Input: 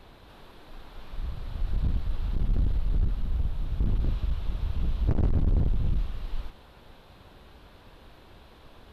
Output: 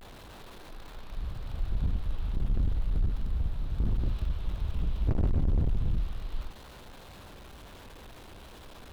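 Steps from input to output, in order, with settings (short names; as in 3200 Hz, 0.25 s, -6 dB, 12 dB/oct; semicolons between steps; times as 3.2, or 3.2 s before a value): zero-crossing step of -44.5 dBFS; vibrato 0.34 Hz 47 cents; gain -2.5 dB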